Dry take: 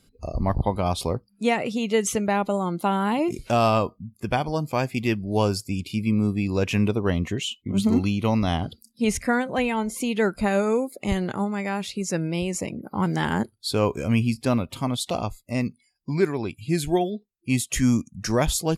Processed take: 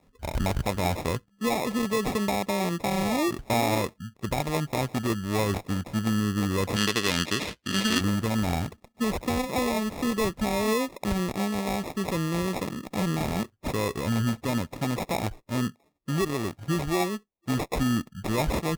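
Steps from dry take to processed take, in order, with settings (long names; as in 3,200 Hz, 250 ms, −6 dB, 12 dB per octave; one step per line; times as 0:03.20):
decimation without filtering 29×
brickwall limiter −16.5 dBFS, peak gain reduction 7.5 dB
0:06.76–0:08.01: meter weighting curve D
harmonic generator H 6 −12 dB, 8 −16 dB, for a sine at −5 dBFS
level −1 dB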